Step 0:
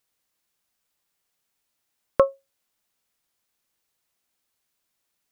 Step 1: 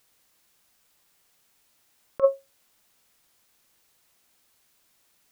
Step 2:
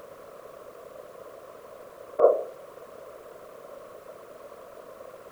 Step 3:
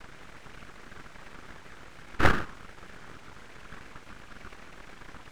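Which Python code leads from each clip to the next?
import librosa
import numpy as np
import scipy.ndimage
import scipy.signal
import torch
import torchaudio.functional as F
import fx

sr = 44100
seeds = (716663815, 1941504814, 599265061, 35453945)

y1 = fx.over_compress(x, sr, threshold_db=-23.0, ratio=-0.5)
y1 = F.gain(torch.from_numpy(y1), 5.0).numpy()
y2 = fx.bin_compress(y1, sr, power=0.4)
y2 = scipy.signal.sosfilt(scipy.signal.butter(2, 79.0, 'highpass', fs=sr, output='sos'), y2)
y2 = fx.whisperise(y2, sr, seeds[0])
y3 = fx.noise_vocoder(y2, sr, seeds[1], bands=8)
y3 = fx.highpass(y3, sr, hz=680.0, slope=6)
y3 = np.abs(y3)
y3 = F.gain(torch.from_numpy(y3), 4.0).numpy()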